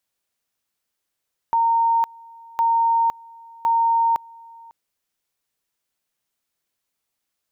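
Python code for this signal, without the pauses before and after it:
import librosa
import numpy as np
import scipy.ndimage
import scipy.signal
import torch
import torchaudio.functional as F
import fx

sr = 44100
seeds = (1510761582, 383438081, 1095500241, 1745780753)

y = fx.two_level_tone(sr, hz=920.0, level_db=-15.0, drop_db=25.5, high_s=0.51, low_s=0.55, rounds=3)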